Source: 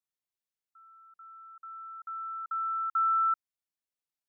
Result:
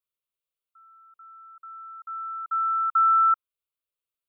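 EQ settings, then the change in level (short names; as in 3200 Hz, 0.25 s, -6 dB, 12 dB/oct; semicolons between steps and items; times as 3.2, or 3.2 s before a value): dynamic EQ 1300 Hz, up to +5 dB, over -38 dBFS; fixed phaser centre 1200 Hz, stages 8; +3.0 dB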